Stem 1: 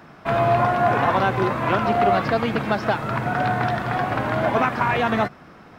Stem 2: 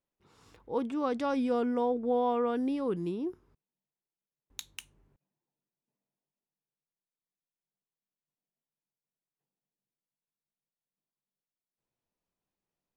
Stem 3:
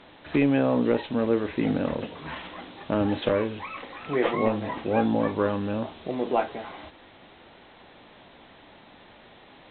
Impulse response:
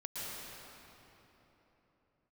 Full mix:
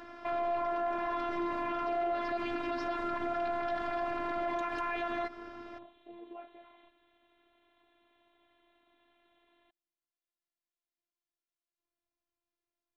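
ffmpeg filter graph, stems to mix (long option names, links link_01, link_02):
-filter_complex "[0:a]volume=1dB[link_01];[1:a]volume=1dB[link_02];[2:a]alimiter=limit=-19dB:level=0:latency=1,volume=-15.5dB[link_03];[link_01][link_02][link_03]amix=inputs=3:normalize=0,lowpass=5300,afftfilt=real='hypot(re,im)*cos(PI*b)':imag='0':win_size=512:overlap=0.75,alimiter=limit=-23.5dB:level=0:latency=1:release=90"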